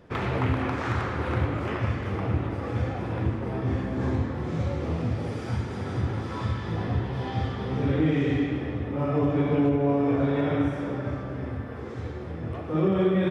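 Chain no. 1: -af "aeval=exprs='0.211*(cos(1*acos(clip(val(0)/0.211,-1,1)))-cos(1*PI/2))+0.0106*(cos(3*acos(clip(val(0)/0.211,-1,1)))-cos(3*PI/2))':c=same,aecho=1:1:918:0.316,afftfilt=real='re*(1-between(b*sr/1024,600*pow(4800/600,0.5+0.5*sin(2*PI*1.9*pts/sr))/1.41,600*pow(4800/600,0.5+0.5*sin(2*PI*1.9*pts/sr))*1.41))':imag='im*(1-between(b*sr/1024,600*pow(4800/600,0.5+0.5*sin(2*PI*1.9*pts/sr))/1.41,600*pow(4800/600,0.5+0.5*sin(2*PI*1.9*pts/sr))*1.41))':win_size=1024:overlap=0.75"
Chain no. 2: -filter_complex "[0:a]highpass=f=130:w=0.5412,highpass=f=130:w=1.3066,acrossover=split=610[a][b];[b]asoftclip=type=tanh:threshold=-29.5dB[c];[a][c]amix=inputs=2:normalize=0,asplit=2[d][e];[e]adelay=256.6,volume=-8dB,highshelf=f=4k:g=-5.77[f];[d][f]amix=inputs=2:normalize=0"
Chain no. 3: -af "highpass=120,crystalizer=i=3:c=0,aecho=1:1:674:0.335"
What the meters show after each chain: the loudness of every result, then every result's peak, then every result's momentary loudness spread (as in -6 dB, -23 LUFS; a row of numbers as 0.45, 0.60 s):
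-29.0, -28.5, -28.0 LUFS; -13.0, -12.5, -12.5 dBFS; 9, 10, 9 LU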